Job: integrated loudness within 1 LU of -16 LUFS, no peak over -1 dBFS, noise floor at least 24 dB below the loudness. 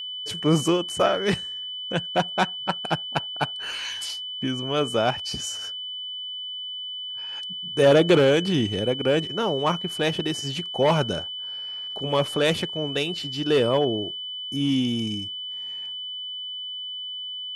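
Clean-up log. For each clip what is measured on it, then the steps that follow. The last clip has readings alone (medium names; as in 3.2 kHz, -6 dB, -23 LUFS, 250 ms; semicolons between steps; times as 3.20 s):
steady tone 3 kHz; tone level -31 dBFS; loudness -25.0 LUFS; peak level -6.5 dBFS; loudness target -16.0 LUFS
-> band-stop 3 kHz, Q 30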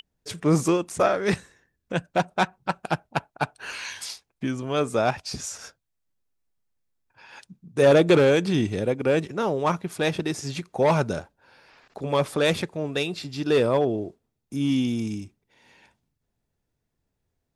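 steady tone not found; loudness -24.5 LUFS; peak level -7.0 dBFS; loudness target -16.0 LUFS
-> trim +8.5 dB; peak limiter -1 dBFS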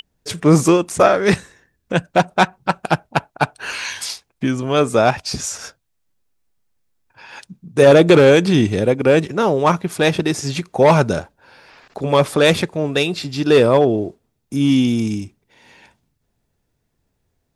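loudness -16.5 LUFS; peak level -1.0 dBFS; noise floor -71 dBFS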